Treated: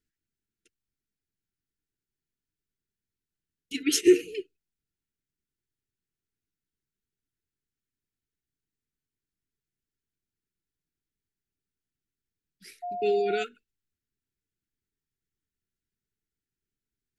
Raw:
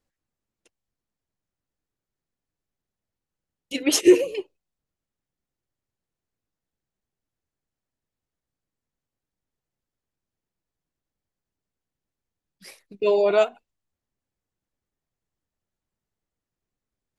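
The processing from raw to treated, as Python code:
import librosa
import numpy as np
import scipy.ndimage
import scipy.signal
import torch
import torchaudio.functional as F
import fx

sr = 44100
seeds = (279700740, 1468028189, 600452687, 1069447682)

y = fx.brickwall_bandstop(x, sr, low_hz=470.0, high_hz=1300.0)
y = fx.dmg_tone(y, sr, hz=710.0, level_db=-27.0, at=(12.82, 13.42), fade=0.02)
y = y * 10.0 ** (-4.0 / 20.0)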